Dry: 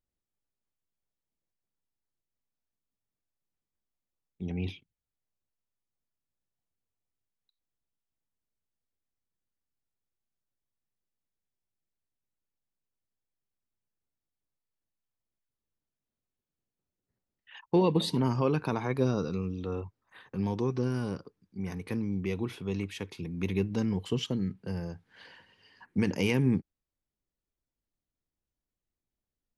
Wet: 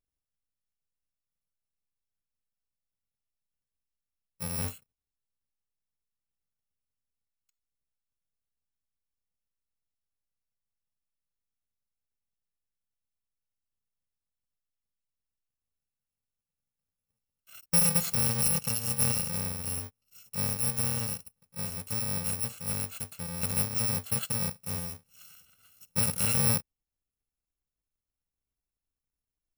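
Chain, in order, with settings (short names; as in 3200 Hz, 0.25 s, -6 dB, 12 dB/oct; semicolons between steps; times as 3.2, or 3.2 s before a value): FFT order left unsorted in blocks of 128 samples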